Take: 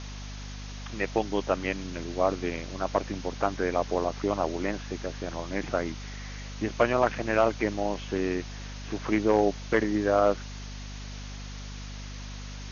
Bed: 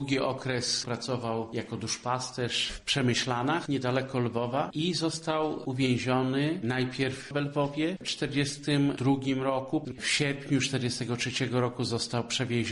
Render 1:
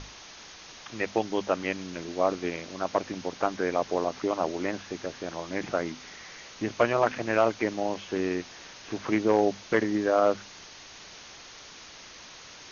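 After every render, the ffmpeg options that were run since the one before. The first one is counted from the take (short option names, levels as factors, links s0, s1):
-af "bandreject=f=50:t=h:w=6,bandreject=f=100:t=h:w=6,bandreject=f=150:t=h:w=6,bandreject=f=200:t=h:w=6,bandreject=f=250:t=h:w=6"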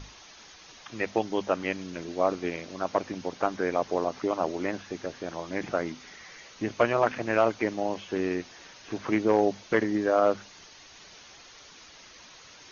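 -af "afftdn=nr=6:nf=-47"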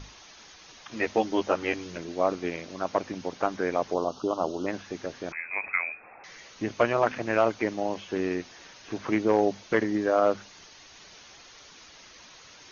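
-filter_complex "[0:a]asettb=1/sr,asplit=3[s0][s1][s2];[s0]atrim=end=0.904[s3];[s1]atrim=start=0.9:end=1.98,asetpts=PTS-STARTPTS,afade=t=in:d=0.004:c=qsin,afade=t=out:st=1.076:d=0.004:c=qsin,asplit=2[s4][s5];[s5]adelay=13,volume=0.794[s6];[s4][s6]amix=inputs=2:normalize=0,atrim=end_sample=47628[s7];[s2]atrim=start=1.976[s8];[s3][s7]acrossfade=d=0.004:c1=hsin:c2=qsin[s9];[s9][s8]acrossfade=d=0.004:c1=qsin:c2=hsin,asplit=3[s10][s11][s12];[s10]afade=t=out:st=3.93:d=0.02[s13];[s11]asuperstop=centerf=2000:order=8:qfactor=1.4,afade=t=in:st=3.93:d=0.02,afade=t=out:st=4.66:d=0.02[s14];[s12]afade=t=in:st=4.66:d=0.02[s15];[s13][s14][s15]amix=inputs=3:normalize=0,asettb=1/sr,asplit=3[s16][s17][s18];[s16]atrim=end=5.324[s19];[s17]atrim=start=5.32:end=6.24,asetpts=PTS-STARTPTS,afade=t=in:d=0.004:c=qsin,afade=t=out:st=0.916:d=0.004:c=qsin,lowpass=f=2300:t=q:w=0.5098,lowpass=f=2300:t=q:w=0.6013,lowpass=f=2300:t=q:w=0.9,lowpass=f=2300:t=q:w=2.563,afreqshift=-2700[s20];[s18]atrim=start=6.236[s21];[s19][s20]acrossfade=d=0.004:c1=hsin:c2=qsin[s22];[s22][s21]acrossfade=d=0.004:c1=qsin:c2=hsin"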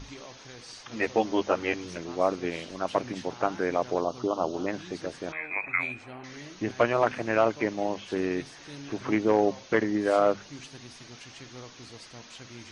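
-filter_complex "[1:a]volume=0.133[s0];[0:a][s0]amix=inputs=2:normalize=0"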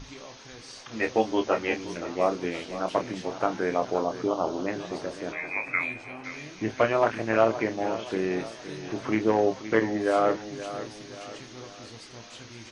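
-filter_complex "[0:a]asplit=2[s0][s1];[s1]adelay=27,volume=0.398[s2];[s0][s2]amix=inputs=2:normalize=0,aecho=1:1:521|1042|1563|2084|2605:0.224|0.103|0.0474|0.0218|0.01"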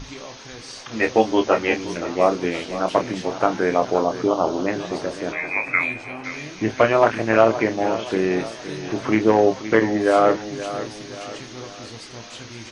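-af "volume=2.24,alimiter=limit=0.708:level=0:latency=1"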